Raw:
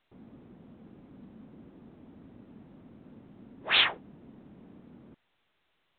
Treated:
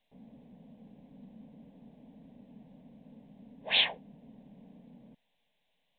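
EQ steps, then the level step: static phaser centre 350 Hz, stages 6; 0.0 dB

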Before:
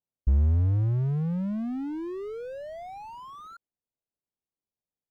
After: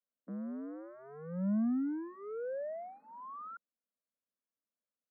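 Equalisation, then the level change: steep high-pass 190 Hz 72 dB/octave; low-pass 1.8 kHz 24 dB/octave; static phaser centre 560 Hz, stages 8; 0.0 dB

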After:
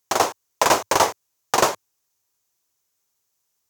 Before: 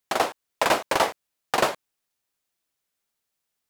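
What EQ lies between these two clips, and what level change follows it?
fifteen-band graphic EQ 100 Hz +10 dB, 400 Hz +5 dB, 1 kHz +6 dB, 6.3 kHz +11 dB, 16 kHz +10 dB; 0.0 dB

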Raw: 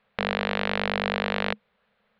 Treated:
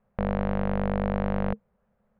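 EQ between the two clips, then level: Bessel low-pass 650 Hz, order 2; bass shelf 120 Hz +11 dB; band-stop 450 Hz, Q 12; +2.0 dB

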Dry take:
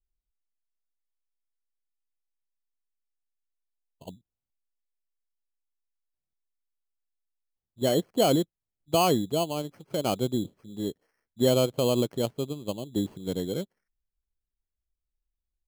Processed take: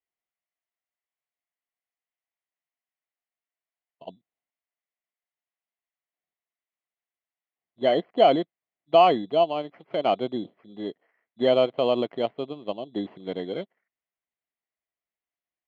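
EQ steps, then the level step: cabinet simulation 240–3300 Hz, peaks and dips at 690 Hz +10 dB, 1.1 kHz +4 dB, 2 kHz +10 dB, 3 kHz +3 dB; 0.0 dB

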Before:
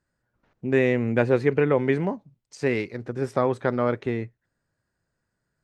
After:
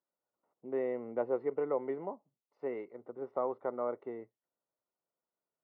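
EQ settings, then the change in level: Savitzky-Golay filter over 65 samples; high-pass 480 Hz 12 dB/octave; distance through air 250 m; -7.0 dB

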